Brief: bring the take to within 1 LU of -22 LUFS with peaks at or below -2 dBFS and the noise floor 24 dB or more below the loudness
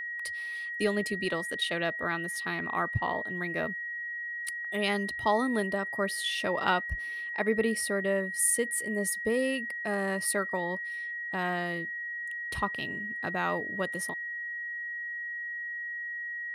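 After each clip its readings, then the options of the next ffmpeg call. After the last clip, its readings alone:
steady tone 1900 Hz; tone level -34 dBFS; loudness -31.0 LUFS; peak -13.0 dBFS; loudness target -22.0 LUFS
-> -af "bandreject=f=1.9k:w=30"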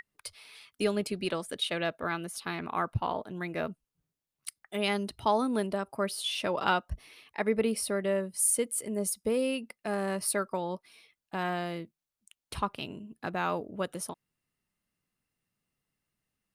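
steady tone none; loudness -31.5 LUFS; peak -13.5 dBFS; loudness target -22.0 LUFS
-> -af "volume=9.5dB"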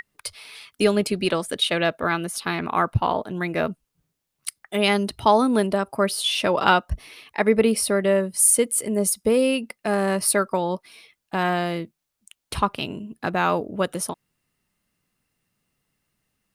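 loudness -22.0 LUFS; peak -4.0 dBFS; noise floor -80 dBFS

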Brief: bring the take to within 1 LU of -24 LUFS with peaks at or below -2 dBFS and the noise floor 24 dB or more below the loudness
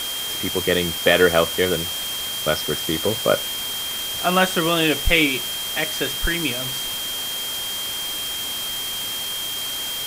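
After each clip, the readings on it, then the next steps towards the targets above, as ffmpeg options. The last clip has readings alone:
steady tone 3200 Hz; tone level -27 dBFS; noise floor -28 dBFS; noise floor target -45 dBFS; loudness -21.0 LUFS; peak -1.5 dBFS; loudness target -24.0 LUFS
-> -af "bandreject=f=3.2k:w=30"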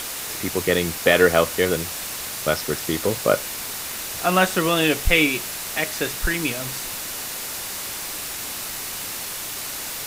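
steady tone none; noise floor -31 dBFS; noise floor target -47 dBFS
-> -af "afftdn=nr=16:nf=-31"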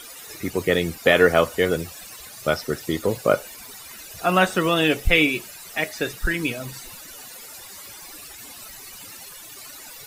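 noise floor -41 dBFS; noise floor target -46 dBFS
-> -af "afftdn=nr=6:nf=-41"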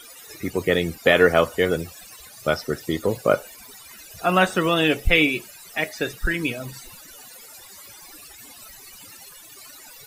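noise floor -45 dBFS; noise floor target -46 dBFS
-> -af "afftdn=nr=6:nf=-45"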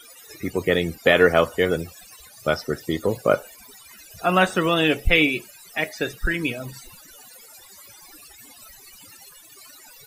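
noise floor -48 dBFS; loudness -22.0 LUFS; peak -2.0 dBFS; loudness target -24.0 LUFS
-> -af "volume=-2dB"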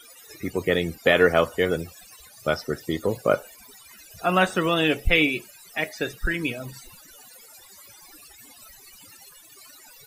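loudness -24.0 LUFS; peak -4.0 dBFS; noise floor -50 dBFS

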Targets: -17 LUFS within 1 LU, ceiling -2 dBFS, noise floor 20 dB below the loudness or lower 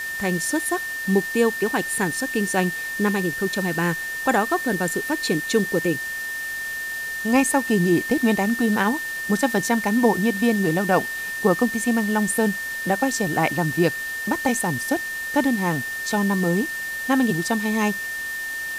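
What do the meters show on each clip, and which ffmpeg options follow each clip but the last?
steady tone 1800 Hz; tone level -27 dBFS; noise floor -30 dBFS; noise floor target -42 dBFS; loudness -22.0 LUFS; peak -4.0 dBFS; loudness target -17.0 LUFS
-> -af "bandreject=f=1.8k:w=30"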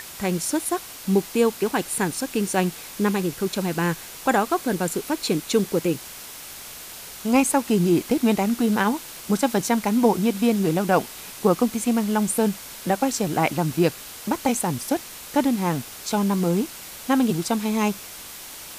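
steady tone none; noise floor -39 dBFS; noise floor target -43 dBFS
-> -af "afftdn=nr=6:nf=-39"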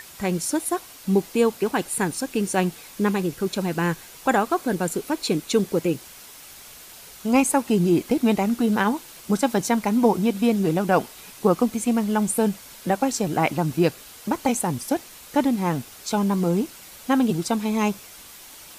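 noise floor -44 dBFS; loudness -23.5 LUFS; peak -5.0 dBFS; loudness target -17.0 LUFS
-> -af "volume=6.5dB,alimiter=limit=-2dB:level=0:latency=1"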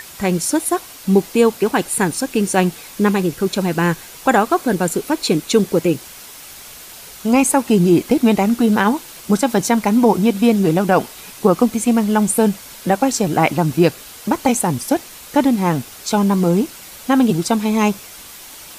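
loudness -17.0 LUFS; peak -2.0 dBFS; noise floor -38 dBFS

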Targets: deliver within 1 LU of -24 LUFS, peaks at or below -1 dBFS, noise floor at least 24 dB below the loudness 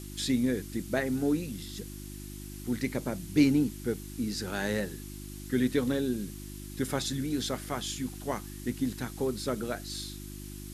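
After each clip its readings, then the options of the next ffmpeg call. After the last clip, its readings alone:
hum 50 Hz; harmonics up to 350 Hz; hum level -41 dBFS; noise floor -42 dBFS; noise floor target -56 dBFS; loudness -31.5 LUFS; peak -12.0 dBFS; loudness target -24.0 LUFS
-> -af "bandreject=f=50:t=h:w=4,bandreject=f=100:t=h:w=4,bandreject=f=150:t=h:w=4,bandreject=f=200:t=h:w=4,bandreject=f=250:t=h:w=4,bandreject=f=300:t=h:w=4,bandreject=f=350:t=h:w=4"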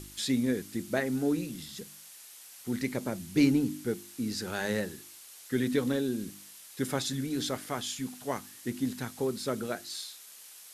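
hum none; noise floor -51 dBFS; noise floor target -56 dBFS
-> -af "afftdn=nr=6:nf=-51"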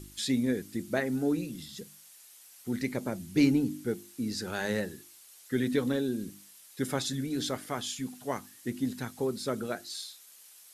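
noise floor -55 dBFS; noise floor target -56 dBFS
-> -af "afftdn=nr=6:nf=-55"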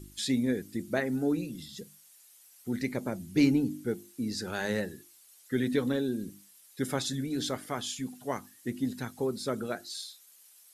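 noise floor -58 dBFS; loudness -32.0 LUFS; peak -13.0 dBFS; loudness target -24.0 LUFS
-> -af "volume=8dB"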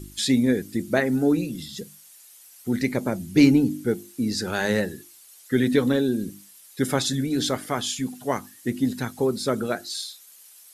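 loudness -24.0 LUFS; peak -5.0 dBFS; noise floor -50 dBFS

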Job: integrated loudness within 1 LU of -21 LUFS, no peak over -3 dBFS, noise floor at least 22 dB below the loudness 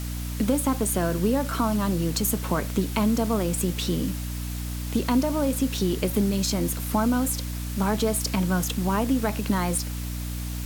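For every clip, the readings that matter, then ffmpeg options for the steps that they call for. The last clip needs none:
hum 60 Hz; harmonics up to 300 Hz; hum level -29 dBFS; noise floor -31 dBFS; noise floor target -48 dBFS; loudness -25.5 LUFS; peak -10.0 dBFS; loudness target -21.0 LUFS
-> -af "bandreject=f=60:t=h:w=4,bandreject=f=120:t=h:w=4,bandreject=f=180:t=h:w=4,bandreject=f=240:t=h:w=4,bandreject=f=300:t=h:w=4"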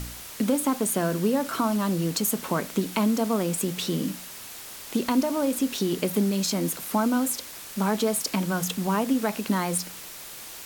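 hum none; noise floor -41 dBFS; noise floor target -48 dBFS
-> -af "afftdn=nr=7:nf=-41"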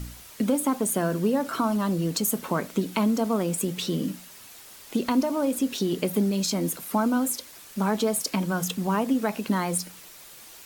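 noise floor -47 dBFS; noise floor target -48 dBFS
-> -af "afftdn=nr=6:nf=-47"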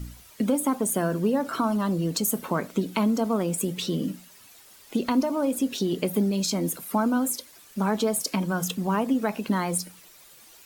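noise floor -52 dBFS; loudness -26.0 LUFS; peak -12.0 dBFS; loudness target -21.0 LUFS
-> -af "volume=5dB"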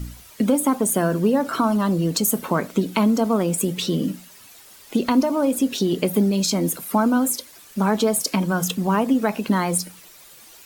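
loudness -21.0 LUFS; peak -7.0 dBFS; noise floor -47 dBFS

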